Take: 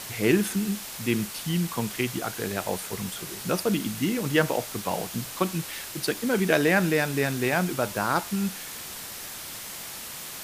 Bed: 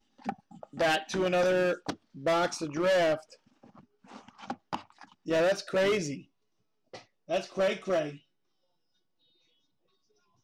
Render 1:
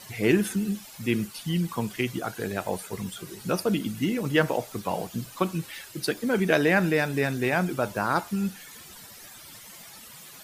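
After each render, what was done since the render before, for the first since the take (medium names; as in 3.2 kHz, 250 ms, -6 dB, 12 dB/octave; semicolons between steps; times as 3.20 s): noise reduction 13 dB, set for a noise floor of -39 dBFS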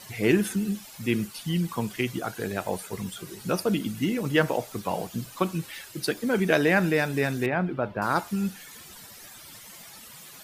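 7.46–8.02 s: distance through air 410 m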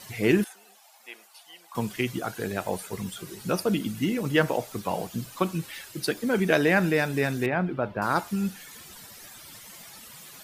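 0.44–1.75 s: ladder high-pass 660 Hz, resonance 65%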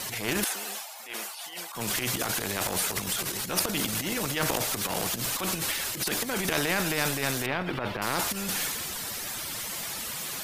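transient shaper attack -11 dB, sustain +9 dB; spectrum-flattening compressor 2:1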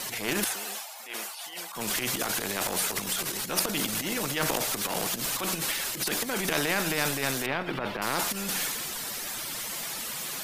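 peaking EQ 84 Hz -15 dB 0.53 oct; de-hum 60.29 Hz, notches 3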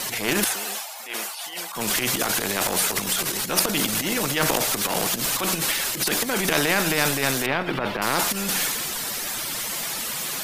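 trim +6 dB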